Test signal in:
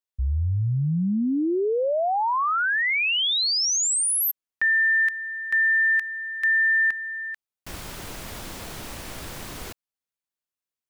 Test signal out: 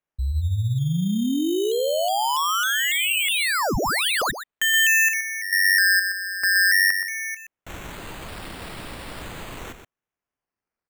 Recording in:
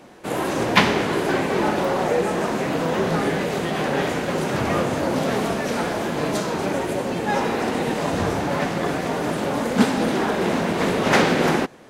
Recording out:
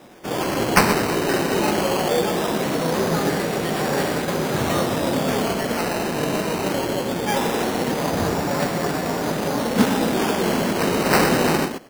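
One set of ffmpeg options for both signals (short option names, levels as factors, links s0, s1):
-filter_complex "[0:a]asplit=2[s0][s1];[s1]adelay=122.4,volume=0.398,highshelf=f=4000:g=-2.76[s2];[s0][s2]amix=inputs=2:normalize=0,acrusher=samples=10:mix=1:aa=0.000001:lfo=1:lforange=6:lforate=0.2"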